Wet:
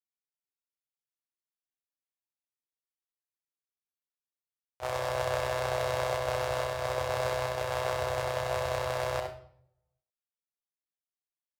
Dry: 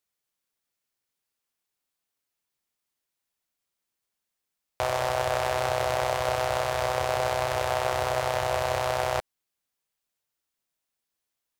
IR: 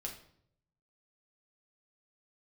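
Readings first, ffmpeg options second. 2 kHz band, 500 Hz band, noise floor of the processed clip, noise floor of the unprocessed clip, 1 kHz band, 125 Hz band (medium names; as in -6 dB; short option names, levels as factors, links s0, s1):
-4.5 dB, -3.5 dB, under -85 dBFS, -85 dBFS, -6.5 dB, -2.5 dB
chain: -filter_complex "[0:a]agate=range=0.141:threshold=0.0501:ratio=16:detection=peak,asplit=2[s0][s1];[1:a]atrim=start_sample=2205,adelay=65[s2];[s1][s2]afir=irnorm=-1:irlink=0,volume=0.668[s3];[s0][s3]amix=inputs=2:normalize=0,volume=0.596"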